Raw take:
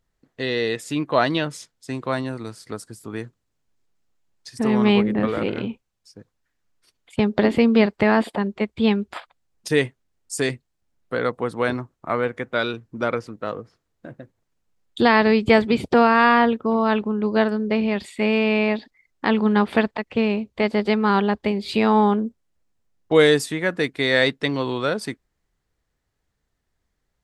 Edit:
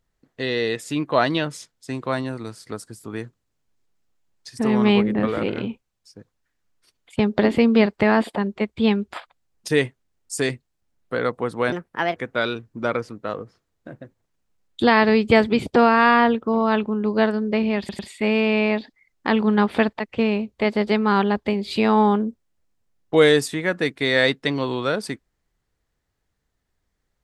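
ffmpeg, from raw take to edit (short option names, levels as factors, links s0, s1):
-filter_complex "[0:a]asplit=5[s0][s1][s2][s3][s4];[s0]atrim=end=11.724[s5];[s1]atrim=start=11.72:end=12.34,asetpts=PTS-STARTPTS,asetrate=62181,aresample=44100,atrim=end_sample=19391,asetpts=PTS-STARTPTS[s6];[s2]atrim=start=12.336:end=18.072[s7];[s3]atrim=start=17.968:end=18.072[s8];[s4]atrim=start=17.968[s9];[s5][s6]acrossfade=d=0.004:c1=hsin:c2=hsin[s10];[s10][s7]acrossfade=d=0.004:c1=hsin:c2=hsin[s11];[s11][s8]acrossfade=d=0.004:c1=hsin:c2=hsin[s12];[s12][s9]acrossfade=d=0.004:c1=hsin:c2=hsin"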